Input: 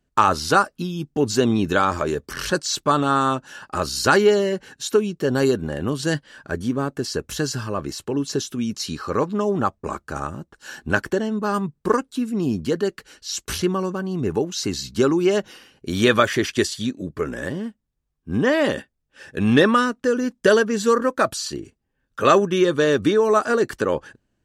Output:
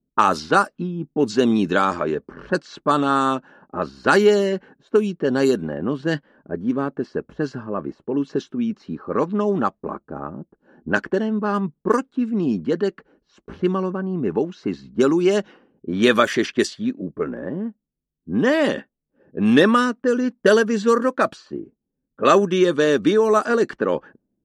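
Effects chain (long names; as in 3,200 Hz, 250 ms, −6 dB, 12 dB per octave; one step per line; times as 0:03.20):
low shelf with overshoot 140 Hz −9 dB, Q 1.5
low-pass that shuts in the quiet parts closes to 330 Hz, open at −13 dBFS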